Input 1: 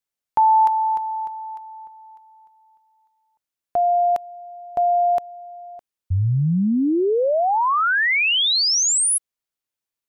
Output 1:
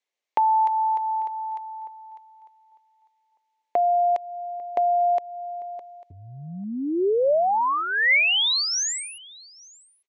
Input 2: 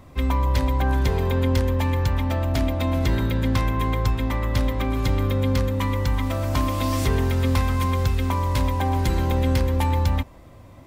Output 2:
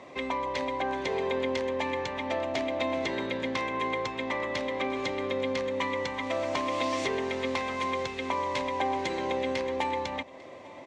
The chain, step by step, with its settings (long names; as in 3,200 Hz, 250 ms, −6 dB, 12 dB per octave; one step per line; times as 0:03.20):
downward compressor 2 to 1, threshold −31 dBFS
loudspeaker in its box 380–6,400 Hz, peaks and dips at 390 Hz +3 dB, 580 Hz +3 dB, 1,400 Hz −8 dB, 2,100 Hz +5 dB, 5,000 Hz −5 dB
single-tap delay 847 ms −23.5 dB
level +5 dB